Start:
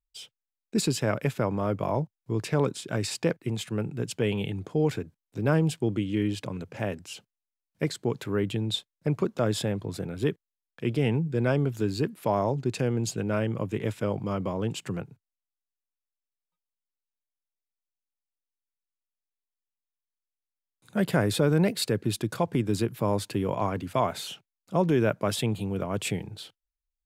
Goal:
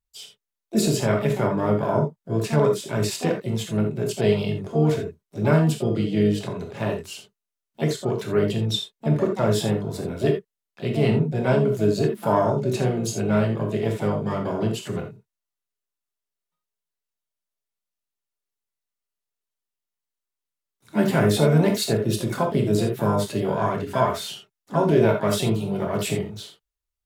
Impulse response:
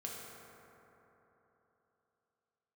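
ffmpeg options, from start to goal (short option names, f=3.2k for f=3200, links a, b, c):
-filter_complex "[0:a]asplit=2[a][b];[b]asetrate=66075,aresample=44100,atempo=0.66742,volume=-9dB[c];[a][c]amix=inputs=2:normalize=0,bandreject=f=2.4k:w=26[d];[1:a]atrim=start_sample=2205,atrim=end_sample=3528,asetrate=39249,aresample=44100[e];[d][e]afir=irnorm=-1:irlink=0,volume=6dB"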